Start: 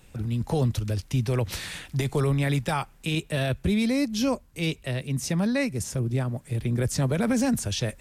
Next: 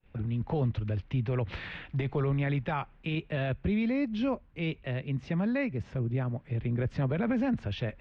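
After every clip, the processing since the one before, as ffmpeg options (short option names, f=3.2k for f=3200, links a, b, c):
-filter_complex "[0:a]lowpass=f=2.9k:w=0.5412,lowpass=f=2.9k:w=1.3066,agate=range=-33dB:threshold=-47dB:ratio=3:detection=peak,asplit=2[a][b];[b]alimiter=level_in=1.5dB:limit=-24dB:level=0:latency=1:release=120,volume=-1.5dB,volume=-2dB[c];[a][c]amix=inputs=2:normalize=0,volume=-7dB"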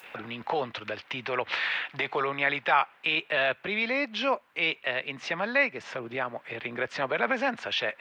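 -filter_complex "[0:a]highpass=830,asplit=2[a][b];[b]acompressor=mode=upward:threshold=-41dB:ratio=2.5,volume=0dB[c];[a][c]amix=inputs=2:normalize=0,volume=7dB"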